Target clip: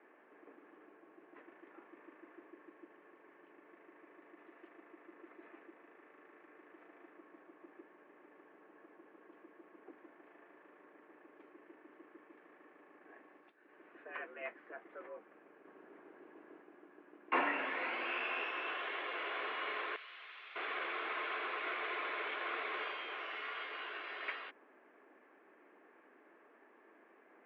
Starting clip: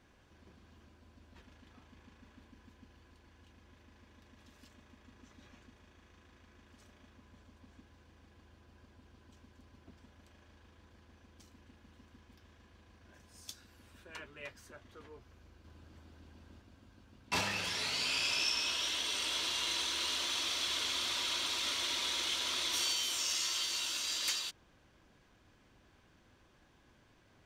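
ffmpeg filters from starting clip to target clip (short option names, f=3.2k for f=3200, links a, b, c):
-filter_complex "[0:a]asettb=1/sr,asplit=3[a][b][c];[a]atrim=end=13.244[d];[b]atrim=start=13.24:end=13.94,asetpts=PTS-STARTPTS,afade=t=in:d=0.004:c=qsin,afade=t=out:st=0.696:d=0.004:c=qsin,acompressor=threshold=-56dB:ratio=5[e];[c]atrim=start=13.936[f];[d][e]acrossfade=d=0.004:c1=hsin:c2=qsin[g];[g][f]acrossfade=d=0.004:c1=qsin:c2=hsin,highpass=f=190:t=q:w=0.5412,highpass=f=190:t=q:w=1.307,lowpass=f=2.2k:t=q:w=0.5176,lowpass=f=2.2k:t=q:w=0.7071,lowpass=f=2.2k:t=q:w=1.932,afreqshift=87,asettb=1/sr,asplit=3[h][i][j];[h]atrim=end=19.964[k];[i]atrim=start=19.96:end=20.56,asetpts=PTS-STARTPTS,afade=t=in:d=0.004:c=qsin,afade=t=out:st=0.596:d=0.004:c=qsin,aderivative[l];[j]atrim=start=20.556[m];[k][l]acrossfade=d=0.004:c1=hsin:c2=qsin[n];[n][m]acrossfade=d=0.004:c1=qsin:c2=hsin,volume=4.5dB"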